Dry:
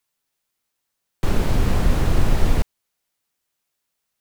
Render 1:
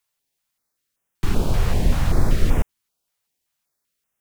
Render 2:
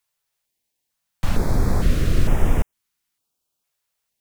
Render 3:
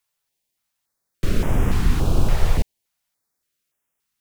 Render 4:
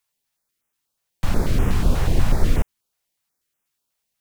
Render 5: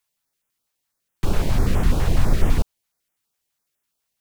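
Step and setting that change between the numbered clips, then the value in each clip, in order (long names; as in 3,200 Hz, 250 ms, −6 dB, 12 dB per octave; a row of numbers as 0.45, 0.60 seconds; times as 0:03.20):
notch on a step sequencer, speed: 5.2, 2.2, 3.5, 8.2, 12 Hertz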